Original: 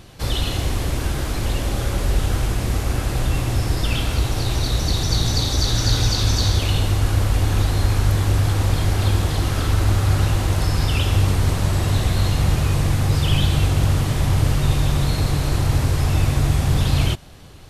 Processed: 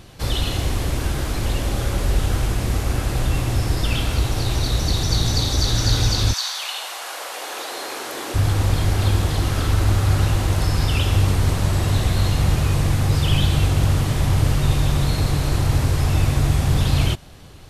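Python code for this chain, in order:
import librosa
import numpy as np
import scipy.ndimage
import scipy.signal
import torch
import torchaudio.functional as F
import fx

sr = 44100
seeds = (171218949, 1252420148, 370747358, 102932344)

y = fx.highpass(x, sr, hz=fx.line((6.32, 940.0), (8.34, 290.0)), slope=24, at=(6.32, 8.34), fade=0.02)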